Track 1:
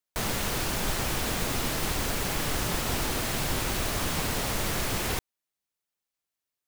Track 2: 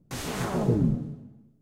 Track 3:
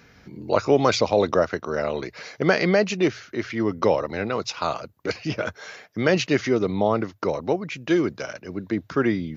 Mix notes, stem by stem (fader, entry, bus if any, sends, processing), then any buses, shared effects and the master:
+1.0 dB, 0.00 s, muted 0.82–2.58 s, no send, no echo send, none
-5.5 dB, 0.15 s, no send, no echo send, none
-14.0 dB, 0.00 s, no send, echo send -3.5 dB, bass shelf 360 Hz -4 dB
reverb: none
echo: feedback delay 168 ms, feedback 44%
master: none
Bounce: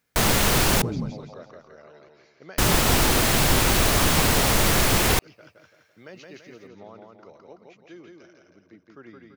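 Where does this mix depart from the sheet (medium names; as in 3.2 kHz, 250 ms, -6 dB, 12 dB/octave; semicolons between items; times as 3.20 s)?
stem 1 +1.0 dB -> +9.5 dB; stem 3 -14.0 dB -> -23.0 dB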